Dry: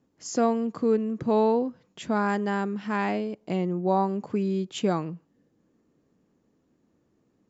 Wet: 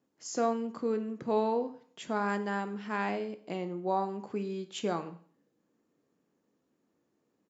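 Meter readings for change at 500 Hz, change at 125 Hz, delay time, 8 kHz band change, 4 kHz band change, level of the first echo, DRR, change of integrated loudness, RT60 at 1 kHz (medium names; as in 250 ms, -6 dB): -6.0 dB, -10.0 dB, 105 ms, no reading, -4.5 dB, -23.0 dB, 9.5 dB, -6.5 dB, 0.50 s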